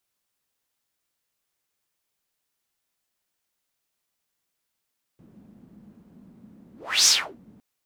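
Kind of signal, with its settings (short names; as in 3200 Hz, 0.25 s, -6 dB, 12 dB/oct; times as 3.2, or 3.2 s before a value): whoosh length 2.41 s, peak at 1.88, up 0.35 s, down 0.33 s, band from 210 Hz, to 6000 Hz, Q 5, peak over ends 35 dB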